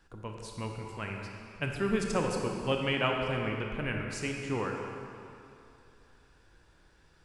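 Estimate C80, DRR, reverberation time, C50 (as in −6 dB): 3.0 dB, 1.0 dB, 2.7 s, 2.0 dB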